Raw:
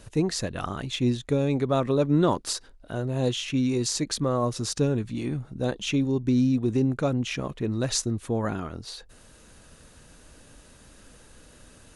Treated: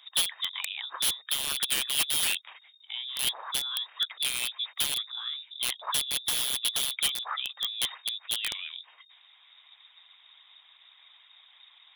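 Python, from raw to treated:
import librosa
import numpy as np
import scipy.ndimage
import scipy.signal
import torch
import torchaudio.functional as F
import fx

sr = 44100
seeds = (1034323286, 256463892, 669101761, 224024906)

y = fx.freq_invert(x, sr, carrier_hz=3700)
y = scipy.signal.sosfilt(scipy.signal.butter(4, 890.0, 'highpass', fs=sr, output='sos'), y)
y = fx.high_shelf(y, sr, hz=2800.0, db=-7.5)
y = (np.mod(10.0 ** (21.0 / 20.0) * y + 1.0, 2.0) - 1.0) / 10.0 ** (21.0 / 20.0)
y = fx.hpss(y, sr, part='harmonic', gain_db=-10)
y = y * librosa.db_to_amplitude(3.5)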